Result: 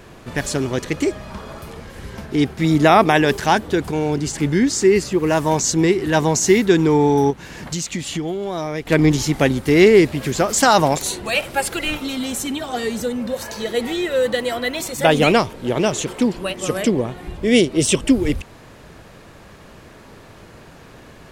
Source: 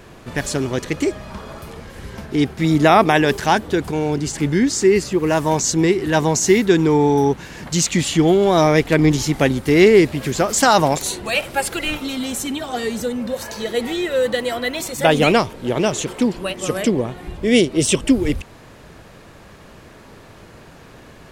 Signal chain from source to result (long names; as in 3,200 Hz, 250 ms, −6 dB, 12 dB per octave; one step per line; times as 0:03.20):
0:07.30–0:08.87: downward compressor 5 to 1, threshold −23 dBFS, peak gain reduction 12 dB